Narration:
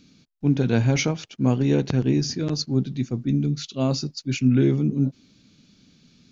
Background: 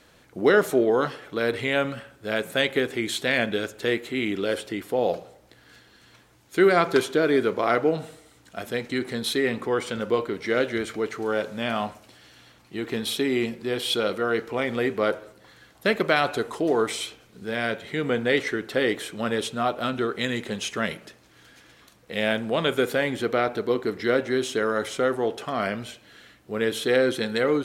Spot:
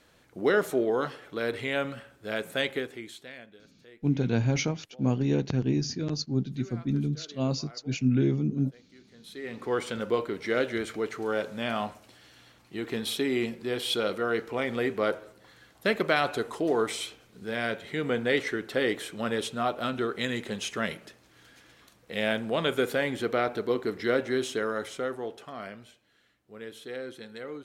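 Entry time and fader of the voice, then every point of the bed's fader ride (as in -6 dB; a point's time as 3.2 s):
3.60 s, -5.5 dB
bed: 2.69 s -5.5 dB
3.61 s -29 dB
9.07 s -29 dB
9.72 s -3.5 dB
24.42 s -3.5 dB
26.08 s -17 dB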